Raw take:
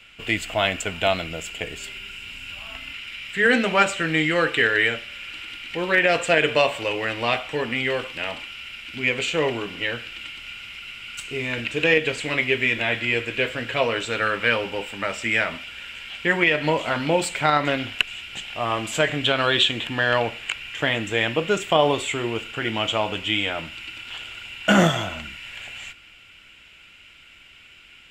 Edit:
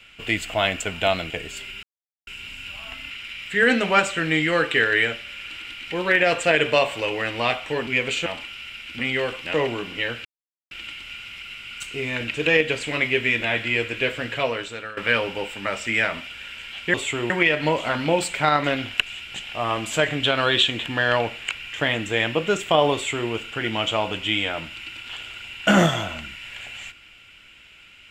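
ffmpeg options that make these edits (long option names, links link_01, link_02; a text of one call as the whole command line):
ffmpeg -i in.wav -filter_complex "[0:a]asplit=11[link_01][link_02][link_03][link_04][link_05][link_06][link_07][link_08][link_09][link_10][link_11];[link_01]atrim=end=1.302[link_12];[link_02]atrim=start=1.568:end=2.1,asetpts=PTS-STARTPTS,afade=type=out:start_time=0.528:duration=0.004:curve=hsin,apad=pad_dur=0.44[link_13];[link_03]atrim=start=2.1:end=7.702,asetpts=PTS-STARTPTS,afade=type=in:duration=0.004:curve=hsin[link_14];[link_04]atrim=start=8.978:end=9.372[link_15];[link_05]atrim=start=8.248:end=8.982[link_16];[link_06]atrim=start=7.698:end=8.252[link_17];[link_07]atrim=start=9.368:end=10.08,asetpts=PTS-STARTPTS,afade=type=out:start_time=0.708:duration=0.004:curve=hsin,apad=pad_dur=0.46[link_18];[link_08]atrim=start=10.08:end=14.34,asetpts=PTS-STARTPTS,afade=type=in:duration=0.004:curve=hsin,afade=type=out:start_time=3.58:duration=0.68:silence=0.133352[link_19];[link_09]atrim=start=14.34:end=16.312,asetpts=PTS-STARTPTS,afade=type=in:duration=0.004:curve=hsin:silence=0.133352[link_20];[link_10]atrim=start=21.948:end=22.312[link_21];[link_11]atrim=start=16.308[link_22];[link_13][link_14]concat=n=2:v=0:a=1[link_23];[link_12][link_23]acrossfade=duration=0.004:curve1=hsin:curve2=hsin[link_24];[link_24][link_15]acrossfade=duration=0.004:curve1=hsin:curve2=hsin[link_25];[link_25][link_16]acrossfade=duration=0.004:curve1=hsin:curve2=hsin[link_26];[link_26][link_17]acrossfade=duration=0.004:curve1=hsin:curve2=hsin[link_27];[link_18][link_19][link_20]concat=n=3:v=0:a=1[link_28];[link_27][link_28]acrossfade=duration=0.004:curve1=hsin:curve2=hsin[link_29];[link_29][link_21]acrossfade=duration=0.004:curve1=hsin:curve2=hsin[link_30];[link_30][link_22]acrossfade=duration=0.004:curve1=hsin:curve2=hsin" out.wav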